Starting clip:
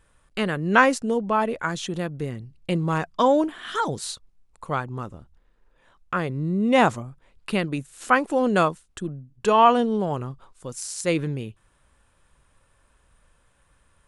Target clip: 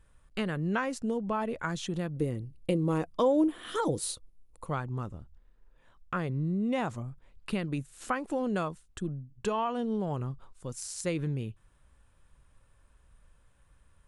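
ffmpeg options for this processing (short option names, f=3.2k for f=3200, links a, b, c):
-filter_complex "[0:a]lowshelf=f=170:g=9,acompressor=threshold=-20dB:ratio=10,asettb=1/sr,asplit=3[a][b][c];[a]atrim=end=2.164[d];[b]atrim=start=2.16:end=4.66,asetpts=PTS-STARTPTS,afade=t=in:d=0.004:c=qsin,afade=t=out:st=2.496:d=0.004:c=qsin,equalizer=f=315:t=o:w=0.33:g=9,equalizer=f=500:t=o:w=0.33:g=10,equalizer=f=1.6k:t=o:w=0.33:g=-5,equalizer=f=10k:t=o:w=0.33:g=11[e];[c]atrim=start=4.656[f];[d][e]acrossfade=d=0.004:c1=hsin:c2=qsin[g];[g][f]acrossfade=d=0.004:c1=qsin:c2=hsin,volume=-6.5dB"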